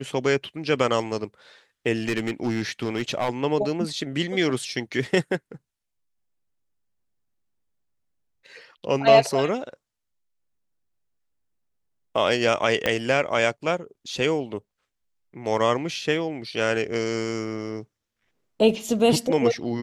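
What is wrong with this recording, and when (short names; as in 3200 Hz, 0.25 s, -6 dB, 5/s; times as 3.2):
2.08–3.29 clipped -19 dBFS
12.86 pop -8 dBFS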